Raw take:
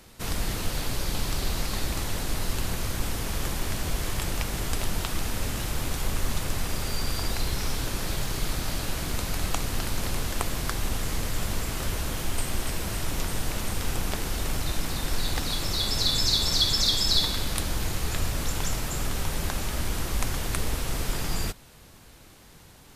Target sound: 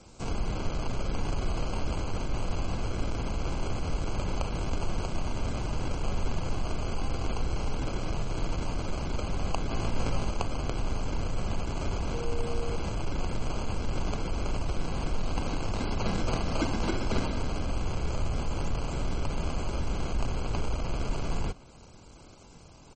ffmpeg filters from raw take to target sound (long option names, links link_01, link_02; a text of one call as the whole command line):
ffmpeg -i in.wav -filter_complex "[0:a]acrossover=split=130|4300[link_01][link_02][link_03];[link_02]acrusher=samples=24:mix=1:aa=0.000001[link_04];[link_03]acompressor=threshold=-50dB:ratio=8[link_05];[link_01][link_04][link_05]amix=inputs=3:normalize=0,aresample=22050,aresample=44100,asplit=2[link_06][link_07];[link_07]asoftclip=type=tanh:threshold=-28dB,volume=-3.5dB[link_08];[link_06][link_08]amix=inputs=2:normalize=0,asettb=1/sr,asplit=3[link_09][link_10][link_11];[link_09]atrim=end=9.694[link_12];[link_10]atrim=start=9.69:end=10.31,asetpts=PTS-STARTPTS,afade=type=in:duration=0.004:curve=qsin,afade=type=out:start_time=0.616:duration=0.004:curve=qsin,asplit=2[link_13][link_14];[link_14]adelay=18,volume=-2dB[link_15];[link_13][link_15]amix=inputs=2:normalize=0,atrim=end_sample=27342[link_16];[link_11]atrim=start=10.306[link_17];[link_12][link_16]acrossfade=duration=0.004:curve1=hsin:curve2=qsin[link_18];[link_18][link_17]acrossfade=duration=0.004:curve1=qsin:curve2=hsin,asettb=1/sr,asplit=3[link_19][link_20][link_21];[link_19]atrim=end=12.144[link_22];[link_20]atrim=start=12.14:end=12.76,asetpts=PTS-STARTPTS,afade=type=in:duration=0.004:curve=qsin,afade=type=out:start_time=0.616:duration=0.004:curve=qsin,aeval=exprs='val(0)+0.0282*sin(2*PI*470*n/s)':channel_layout=same[link_23];[link_21]atrim=start=12.756[link_24];[link_22][link_23]acrossfade=duration=0.004:curve1=hsin:curve2=qsin[link_25];[link_25][link_24]acrossfade=duration=0.004:curve1=qsin:curve2=hsin,volume=-3.5dB" -ar 44100 -c:a libmp3lame -b:a 32k out.mp3